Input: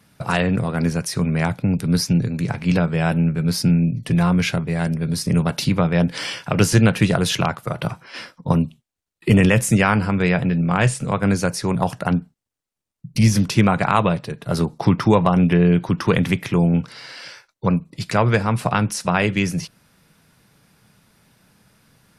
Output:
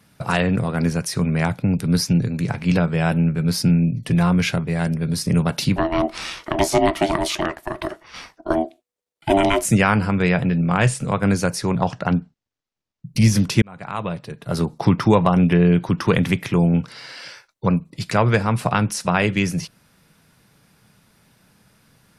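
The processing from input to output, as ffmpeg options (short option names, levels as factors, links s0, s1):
-filter_complex "[0:a]asettb=1/sr,asplit=3[s0][s1][s2];[s0]atrim=end=5.764[s3];[s1]atrim=start=5.76:end=9.65,asetpts=PTS-STARTPTS,afade=t=in:d=0.004:c=qsin,afade=t=out:st=3.886:d=0.004:c=qsin,aeval=exprs='val(0)*sin(2*PI*490*n/s)':c=same[s4];[s2]atrim=start=9.646[s5];[s3][s4]acrossfade=d=0.004:c1=hsin:c2=qsin[s6];[s6][s5]acrossfade=d=0.004:c1=qsin:c2=hsin,asettb=1/sr,asplit=3[s7][s8][s9];[s7]atrim=end=11.694[s10];[s8]atrim=start=11.69:end=13.06,asetpts=PTS-STARTPTS,afade=t=in:d=0.004:c=qsin,afade=t=out:st=1.366:d=0.004:c=qsin,lowpass=f=6400:w=0.5412,lowpass=f=6400:w=1.3066[s11];[s9]atrim=start=13.056[s12];[s10][s11]acrossfade=d=0.004:c1=hsin:c2=qsin[s13];[s13][s12]acrossfade=d=0.004:c1=qsin:c2=hsin,asplit=2[s14][s15];[s14]atrim=end=13.62,asetpts=PTS-STARTPTS,afade=t=out:st=13.616:d=0.004:c=hsin[s16];[s15]atrim=start=13.62,asetpts=PTS-STARTPTS,afade=t=in:d=1.13[s17];[s16][s17]concat=n=2:v=0:a=1"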